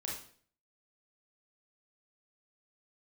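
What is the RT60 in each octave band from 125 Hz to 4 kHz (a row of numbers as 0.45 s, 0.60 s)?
0.65 s, 0.55 s, 0.55 s, 0.45 s, 0.45 s, 0.45 s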